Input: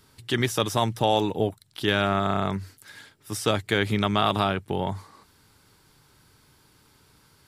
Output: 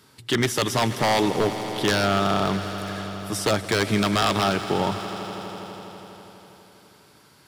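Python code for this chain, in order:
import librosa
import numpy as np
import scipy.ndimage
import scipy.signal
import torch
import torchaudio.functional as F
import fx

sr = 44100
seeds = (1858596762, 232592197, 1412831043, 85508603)

y = scipy.signal.sosfilt(scipy.signal.butter(2, 130.0, 'highpass', fs=sr, output='sos'), x)
y = fx.high_shelf(y, sr, hz=9200.0, db=-4.0)
y = 10.0 ** (-17.5 / 20.0) * (np.abs((y / 10.0 ** (-17.5 / 20.0) + 3.0) % 4.0 - 2.0) - 1.0)
y = fx.echo_swell(y, sr, ms=82, loudest=5, wet_db=-17.0)
y = F.gain(torch.from_numpy(y), 4.5).numpy()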